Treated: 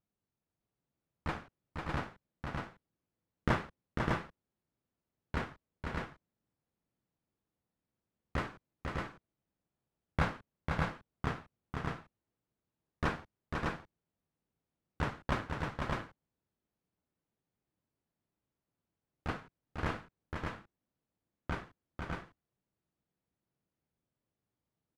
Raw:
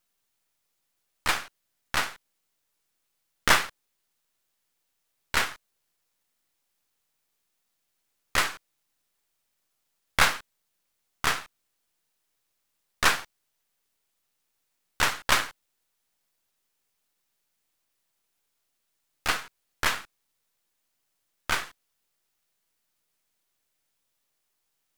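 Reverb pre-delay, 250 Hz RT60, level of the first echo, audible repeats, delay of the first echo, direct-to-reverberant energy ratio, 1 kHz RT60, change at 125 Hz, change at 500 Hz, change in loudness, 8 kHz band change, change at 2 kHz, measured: none, none, -5.0 dB, 2, 0.497 s, none, none, +6.5 dB, -2.5 dB, -12.5 dB, -25.5 dB, -13.0 dB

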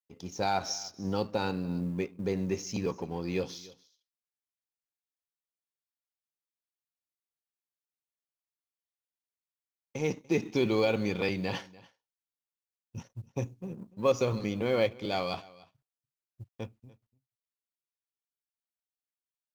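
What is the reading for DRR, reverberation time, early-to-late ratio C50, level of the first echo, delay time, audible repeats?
none, none, none, -21.5 dB, 0.292 s, 1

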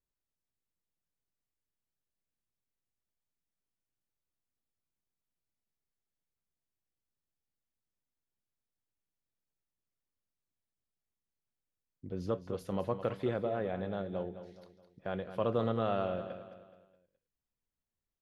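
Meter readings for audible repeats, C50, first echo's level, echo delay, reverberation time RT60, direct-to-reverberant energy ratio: 4, none, -11.5 dB, 0.211 s, none, none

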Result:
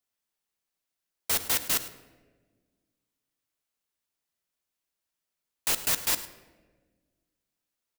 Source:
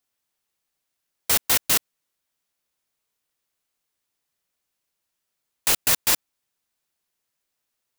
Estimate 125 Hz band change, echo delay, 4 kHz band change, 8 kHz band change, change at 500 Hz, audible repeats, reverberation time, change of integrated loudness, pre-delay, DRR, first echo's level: -6.0 dB, 0.105 s, -6.0 dB, -6.0 dB, -6.0 dB, 1, 1.4 s, -6.0 dB, 3 ms, 10.5 dB, -16.5 dB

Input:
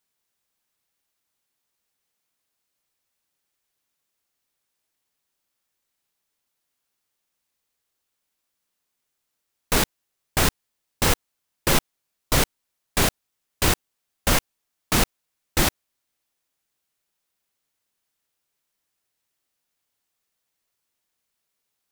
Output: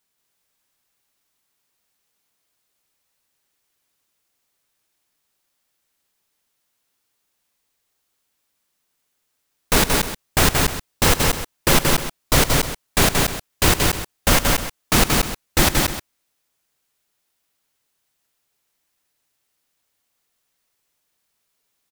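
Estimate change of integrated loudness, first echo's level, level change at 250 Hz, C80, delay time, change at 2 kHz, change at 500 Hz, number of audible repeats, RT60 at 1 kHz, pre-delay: +5.0 dB, -15.5 dB, +6.0 dB, none, 0.107 s, +6.0 dB, +6.0 dB, 3, none, none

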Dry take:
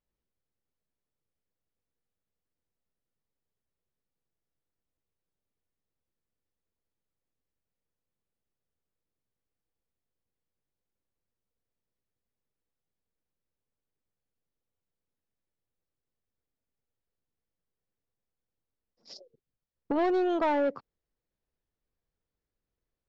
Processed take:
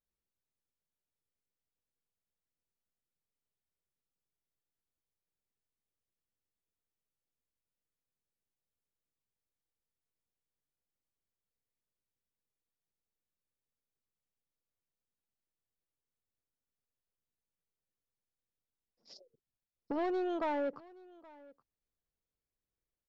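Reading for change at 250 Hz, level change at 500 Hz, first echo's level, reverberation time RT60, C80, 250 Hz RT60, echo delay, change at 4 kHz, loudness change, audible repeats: -7.5 dB, -7.5 dB, -22.5 dB, none, none, none, 0.823 s, -7.5 dB, -7.5 dB, 1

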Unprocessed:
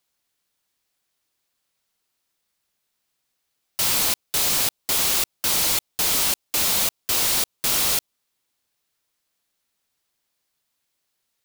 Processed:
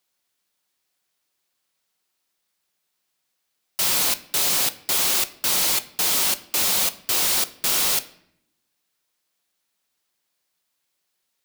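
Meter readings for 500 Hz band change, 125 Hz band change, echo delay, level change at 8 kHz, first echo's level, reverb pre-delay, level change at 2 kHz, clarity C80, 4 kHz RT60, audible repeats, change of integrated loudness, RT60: 0.0 dB, -4.0 dB, none, 0.0 dB, none, 5 ms, +0.5 dB, 20.5 dB, 0.55 s, none, 0.0 dB, 0.70 s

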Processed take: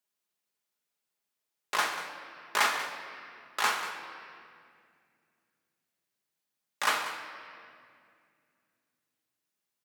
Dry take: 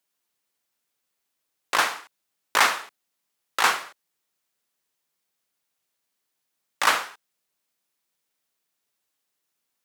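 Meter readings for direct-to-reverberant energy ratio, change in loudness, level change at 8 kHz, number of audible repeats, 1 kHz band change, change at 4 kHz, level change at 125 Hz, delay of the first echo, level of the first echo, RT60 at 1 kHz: 2.5 dB, -7.5 dB, -6.5 dB, 1, -6.5 dB, -6.5 dB, n/a, 0.189 s, -12.5 dB, 2.1 s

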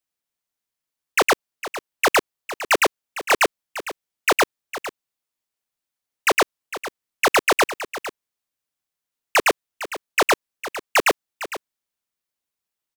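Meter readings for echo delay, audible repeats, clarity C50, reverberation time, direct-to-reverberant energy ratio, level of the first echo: 0.456 s, 1, none, none, none, -13.5 dB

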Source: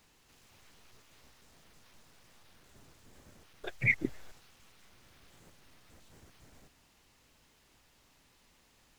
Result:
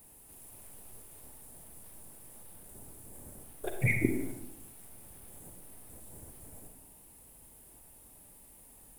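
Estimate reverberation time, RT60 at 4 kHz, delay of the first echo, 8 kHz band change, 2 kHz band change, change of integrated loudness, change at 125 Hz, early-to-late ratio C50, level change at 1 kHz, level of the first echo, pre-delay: 0.90 s, 0.60 s, none, +14.5 dB, -2.5 dB, -8.0 dB, +7.0 dB, 5.5 dB, +5.0 dB, none, 36 ms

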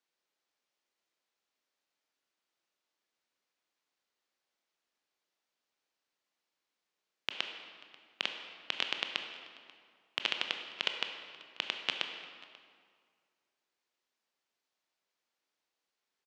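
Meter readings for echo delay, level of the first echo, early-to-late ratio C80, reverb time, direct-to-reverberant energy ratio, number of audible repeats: 0.538 s, -22.5 dB, 7.0 dB, 2.0 s, 4.5 dB, 1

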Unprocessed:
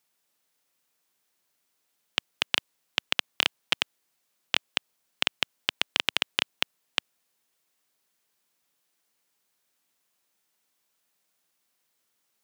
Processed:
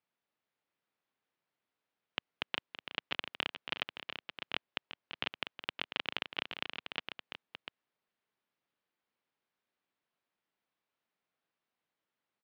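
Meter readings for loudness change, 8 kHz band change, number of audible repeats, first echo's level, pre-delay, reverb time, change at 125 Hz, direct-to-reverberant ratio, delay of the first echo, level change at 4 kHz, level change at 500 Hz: -11.0 dB, under -25 dB, 3, -12.0 dB, none, none, -5.0 dB, none, 0.368 s, -11.5 dB, -6.0 dB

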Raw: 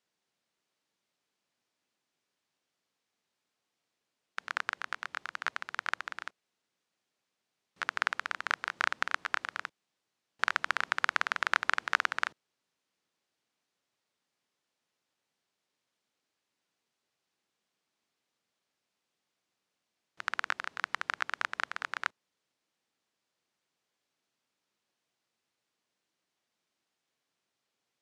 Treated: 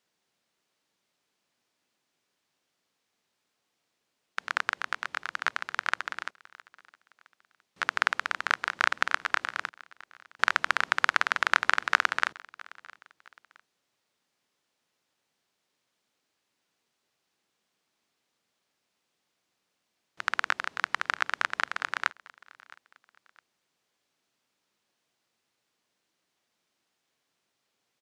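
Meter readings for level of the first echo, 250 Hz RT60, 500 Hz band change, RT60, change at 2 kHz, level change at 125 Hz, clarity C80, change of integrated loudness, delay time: -22.5 dB, none, +5.0 dB, none, +5.0 dB, n/a, none, +5.0 dB, 0.663 s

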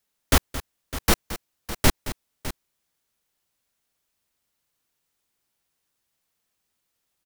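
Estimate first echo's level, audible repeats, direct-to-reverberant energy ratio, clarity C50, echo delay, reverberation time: -14.0 dB, 2, none, none, 0.221 s, none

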